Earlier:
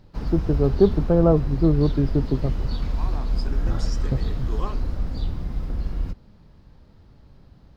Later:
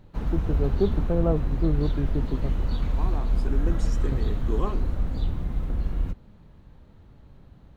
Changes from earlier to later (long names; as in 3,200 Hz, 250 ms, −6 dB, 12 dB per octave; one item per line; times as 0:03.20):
first voice −7.5 dB
second voice: remove meter weighting curve A
master: add parametric band 5,000 Hz −13.5 dB 0.33 octaves